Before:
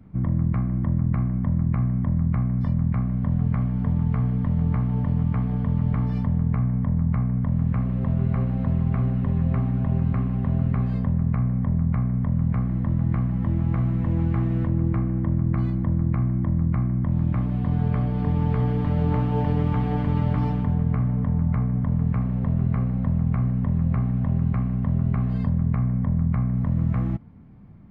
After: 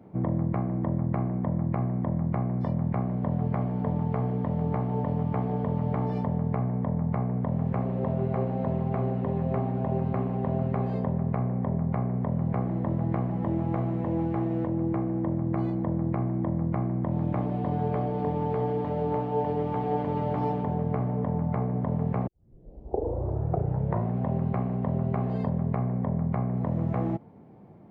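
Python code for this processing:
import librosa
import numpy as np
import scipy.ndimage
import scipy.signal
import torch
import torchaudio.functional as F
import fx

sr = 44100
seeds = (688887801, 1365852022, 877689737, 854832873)

y = fx.edit(x, sr, fx.tape_start(start_s=22.27, length_s=1.91), tone=tone)
y = scipy.signal.sosfilt(scipy.signal.butter(2, 130.0, 'highpass', fs=sr, output='sos'), y)
y = fx.band_shelf(y, sr, hz=550.0, db=11.5, octaves=1.7)
y = fx.rider(y, sr, range_db=10, speed_s=0.5)
y = F.gain(torch.from_numpy(y), -3.5).numpy()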